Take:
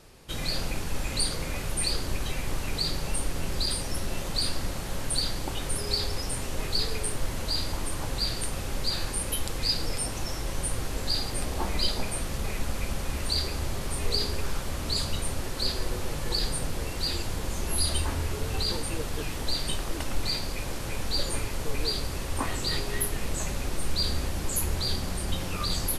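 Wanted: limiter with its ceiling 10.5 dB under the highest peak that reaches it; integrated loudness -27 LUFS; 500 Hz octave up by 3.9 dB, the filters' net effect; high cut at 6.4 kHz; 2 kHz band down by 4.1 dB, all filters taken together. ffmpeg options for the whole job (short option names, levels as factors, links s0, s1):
-af "lowpass=6400,equalizer=f=500:t=o:g=5,equalizer=f=2000:t=o:g=-5.5,volume=2.51,alimiter=limit=0.168:level=0:latency=1"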